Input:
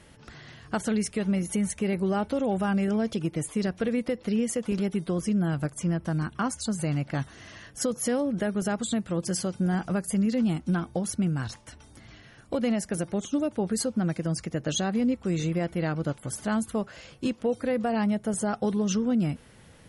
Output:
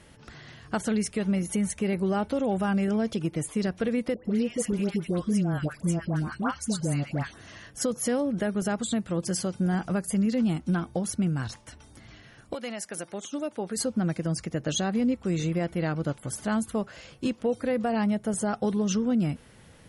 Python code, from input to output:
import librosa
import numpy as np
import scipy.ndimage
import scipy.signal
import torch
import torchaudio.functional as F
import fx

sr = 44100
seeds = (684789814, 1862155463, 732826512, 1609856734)

y = fx.dispersion(x, sr, late='highs', ms=113.0, hz=1200.0, at=(4.14, 7.48))
y = fx.highpass(y, sr, hz=fx.line((12.53, 1200.0), (13.76, 400.0)), slope=6, at=(12.53, 13.76), fade=0.02)